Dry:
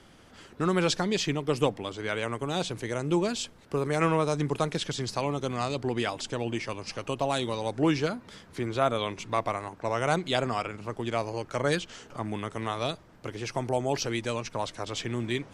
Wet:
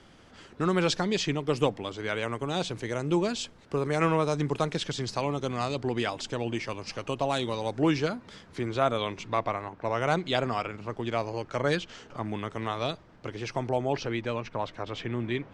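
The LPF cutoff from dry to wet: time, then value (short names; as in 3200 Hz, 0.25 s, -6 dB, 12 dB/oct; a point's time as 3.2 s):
8.96 s 7500 Hz
9.71 s 3300 Hz
10.11 s 5500 Hz
13.55 s 5500 Hz
14.12 s 2900 Hz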